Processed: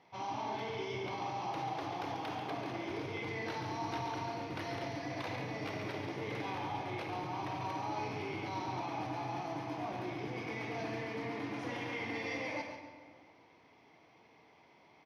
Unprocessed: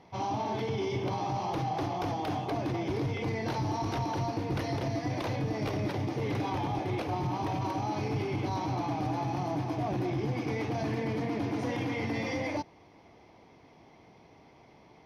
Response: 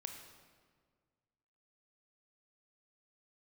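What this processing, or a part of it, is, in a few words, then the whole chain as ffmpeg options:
PA in a hall: -filter_complex "[0:a]highpass=f=150:p=1,equalizer=f=2.1k:t=o:w=2.7:g=7.5,aecho=1:1:140:0.447[a];[1:a]atrim=start_sample=2205[b];[a][b]afir=irnorm=-1:irlink=0,volume=-6.5dB"

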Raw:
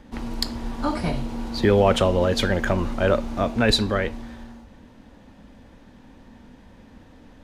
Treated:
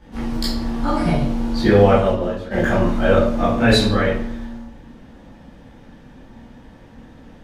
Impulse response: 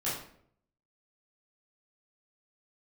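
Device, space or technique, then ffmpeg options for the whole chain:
bathroom: -filter_complex "[0:a]asplit=3[a][b][c];[a]afade=t=out:st=1.77:d=0.02[d];[b]agate=range=-25dB:threshold=-17dB:ratio=16:detection=peak,afade=t=in:st=1.77:d=0.02,afade=t=out:st=2.5:d=0.02[e];[c]afade=t=in:st=2.5:d=0.02[f];[d][e][f]amix=inputs=3:normalize=0[g];[1:a]atrim=start_sample=2205[h];[g][h]afir=irnorm=-1:irlink=0,volume=-1.5dB"

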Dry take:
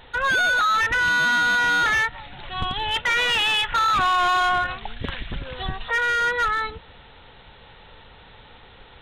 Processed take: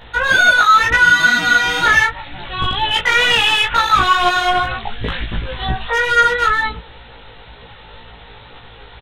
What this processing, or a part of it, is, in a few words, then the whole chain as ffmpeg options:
double-tracked vocal: -filter_complex "[0:a]asplit=2[a][b];[b]adelay=17,volume=-2dB[c];[a][c]amix=inputs=2:normalize=0,flanger=delay=17:depth=2.5:speed=2.1,volume=8.5dB"

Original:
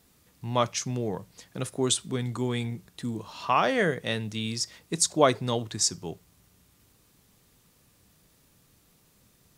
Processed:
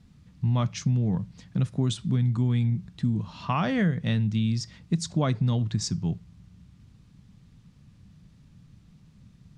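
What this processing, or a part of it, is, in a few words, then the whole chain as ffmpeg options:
jukebox: -af "lowpass=5.1k,lowshelf=f=270:t=q:w=1.5:g=13.5,acompressor=threshold=-19dB:ratio=4,volume=-2dB"

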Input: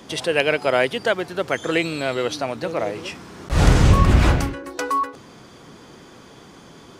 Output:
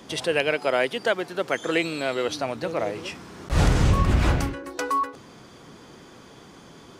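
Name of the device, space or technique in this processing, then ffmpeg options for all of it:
clipper into limiter: -filter_complex "[0:a]asoftclip=type=hard:threshold=-2.5dB,alimiter=limit=-6.5dB:level=0:latency=1:release=327,asettb=1/sr,asplit=3[a][b][c];[a]atrim=end=0.514[d];[b]atrim=start=0.51:end=2.29,asetpts=PTS-STARTPTS,afade=t=in:d=0.004:c=qsin,afade=t=out:st=1.776:d=0.004:c=qsin,highpass=170[e];[c]atrim=start=2.286[f];[d][e]acrossfade=d=0.004:c1=hsin:c2=qsin[g];[g][f]acrossfade=d=0.004:c1=qsin:c2=hsin,volume=-2.5dB"

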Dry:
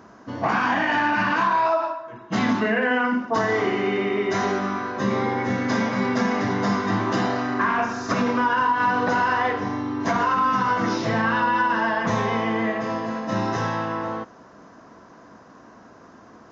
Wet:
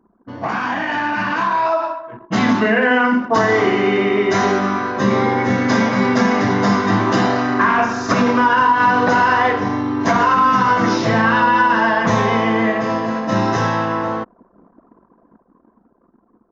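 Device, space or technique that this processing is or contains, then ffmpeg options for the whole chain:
voice memo with heavy noise removal: -af "anlmdn=0.398,dynaudnorm=f=430:g=9:m=8dB"

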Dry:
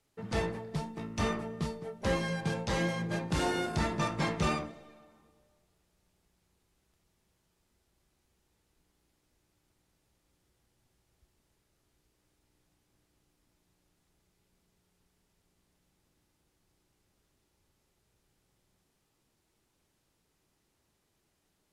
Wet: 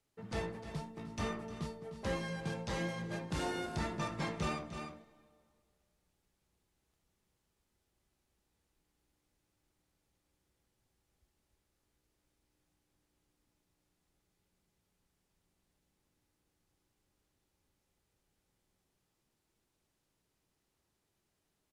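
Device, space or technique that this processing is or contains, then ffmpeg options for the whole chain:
ducked delay: -filter_complex "[0:a]asplit=3[a][b][c];[b]adelay=304,volume=-6.5dB[d];[c]apad=whole_len=971499[e];[d][e]sidechaincompress=threshold=-43dB:ratio=8:attack=7.5:release=189[f];[a][f]amix=inputs=2:normalize=0,volume=-6.5dB"

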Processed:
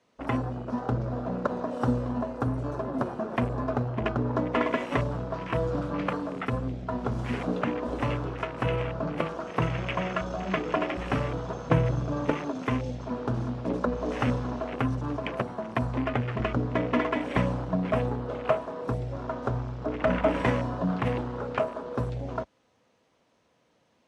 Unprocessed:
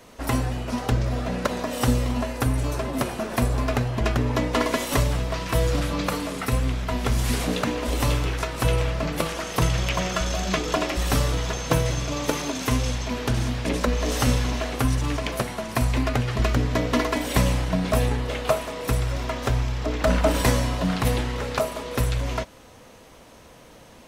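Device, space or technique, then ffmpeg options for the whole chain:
over-cleaned archive recording: -filter_complex "[0:a]highpass=110,lowpass=6.2k,afwtdn=0.0282,asettb=1/sr,asplit=3[a][b][c];[a]atrim=end=11.694[d];[b]atrim=start=11.69:end=12.35,asetpts=PTS-STARTPTS,afade=t=in:d=0.004:c=qsin,afade=t=out:st=0.656:d=0.004:c=qsin,lowshelf=f=190:g=7.5[e];[c]atrim=start=12.346[f];[d][e]acrossfade=d=0.004:c1=hsin:c2=qsin[g];[g][f]acrossfade=d=0.004:c1=qsin:c2=hsin,volume=-2.5dB"

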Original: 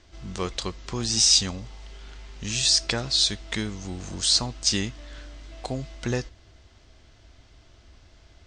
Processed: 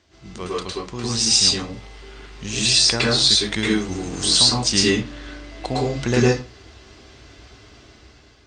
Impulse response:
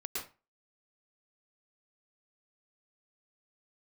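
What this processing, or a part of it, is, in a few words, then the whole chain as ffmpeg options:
far-field microphone of a smart speaker: -filter_complex "[0:a]asettb=1/sr,asplit=3[a][b][c];[a]atrim=end=4.824[d];[b]atrim=start=4.82:end=5.97,asetpts=PTS-STARTPTS,afade=t=in:d=0.004:c=qsin,afade=t=out:st=1.146:d=0.004:c=qsin,lowpass=8.2k[e];[c]atrim=start=5.966[f];[d][e]acrossfade=d=0.004:c1=hsin:c2=qsin[g];[g][f]acrossfade=d=0.004:c1=qsin:c2=hsin[h];[1:a]atrim=start_sample=2205[i];[h][i]afir=irnorm=-1:irlink=0,highpass=84,dynaudnorm=f=460:g=5:m=10dB,volume=1.5dB" -ar 48000 -c:a libopus -b:a 48k

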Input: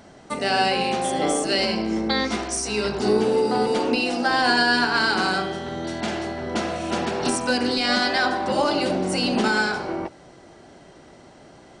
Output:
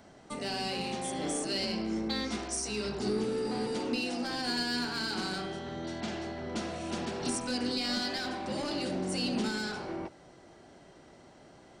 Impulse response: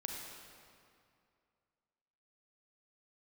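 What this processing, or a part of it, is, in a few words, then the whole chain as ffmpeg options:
one-band saturation: -filter_complex "[0:a]acrossover=split=350|3300[a][b][c];[b]asoftclip=type=tanh:threshold=-30.5dB[d];[a][d][c]amix=inputs=3:normalize=0,asettb=1/sr,asplit=3[e][f][g];[e]atrim=end=5.594[h];[f]atrim=start=5.59:end=6.56,asetpts=PTS-STARTPTS,afade=t=in:d=0.004:c=qsin,afade=t=out:st=0.966:d=0.004:c=qsin,lowpass=7.4k[i];[g]atrim=start=6.556[j];[h][i]acrossfade=d=0.004:c1=hsin:c2=qsin[k];[k][j]acrossfade=d=0.004:c1=qsin:c2=hsin,volume=-7.5dB"

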